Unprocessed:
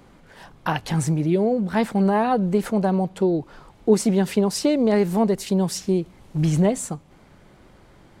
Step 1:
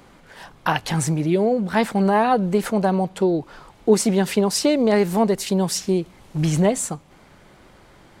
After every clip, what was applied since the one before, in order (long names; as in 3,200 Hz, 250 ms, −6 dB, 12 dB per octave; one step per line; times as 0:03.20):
low-shelf EQ 490 Hz −6 dB
level +5 dB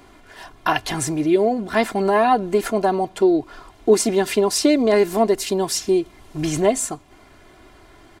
comb filter 2.9 ms, depth 69%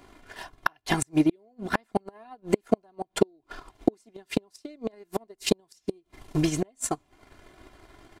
gate with flip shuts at −12 dBFS, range −26 dB
transient designer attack +11 dB, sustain −9 dB
level −5.5 dB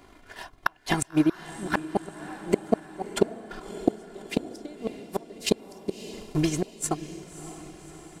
feedback delay with all-pass diffusion 597 ms, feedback 55%, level −13 dB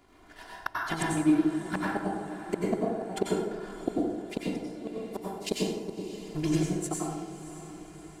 dense smooth reverb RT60 1.1 s, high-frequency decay 0.55×, pre-delay 80 ms, DRR −4.5 dB
level −8.5 dB